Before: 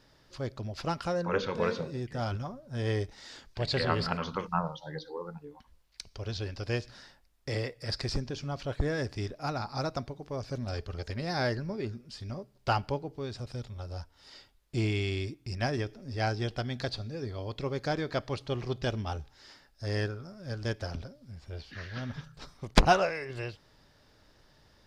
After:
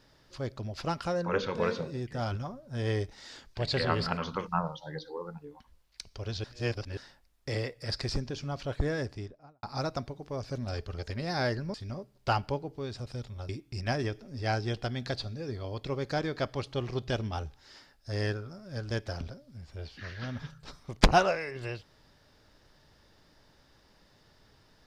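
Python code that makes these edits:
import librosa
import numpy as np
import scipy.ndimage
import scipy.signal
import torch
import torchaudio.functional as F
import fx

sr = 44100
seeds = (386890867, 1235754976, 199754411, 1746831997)

y = fx.studio_fade_out(x, sr, start_s=8.87, length_s=0.76)
y = fx.edit(y, sr, fx.reverse_span(start_s=6.44, length_s=0.53),
    fx.cut(start_s=11.74, length_s=0.4),
    fx.cut(start_s=13.89, length_s=1.34), tone=tone)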